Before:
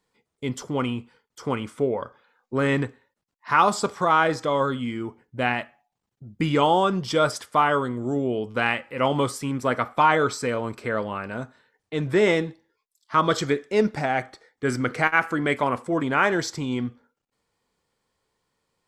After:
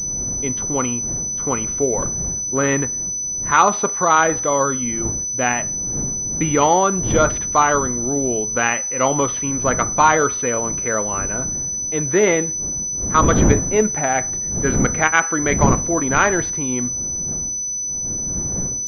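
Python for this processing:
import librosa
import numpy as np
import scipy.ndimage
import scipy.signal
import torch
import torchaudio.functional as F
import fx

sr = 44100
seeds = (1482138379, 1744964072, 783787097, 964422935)

y = fx.dmg_wind(x, sr, seeds[0], corner_hz=180.0, level_db=-29.0)
y = fx.low_shelf(y, sr, hz=240.0, db=-5.0)
y = fx.pwm(y, sr, carrier_hz=6000.0)
y = y * 10.0 ** (5.0 / 20.0)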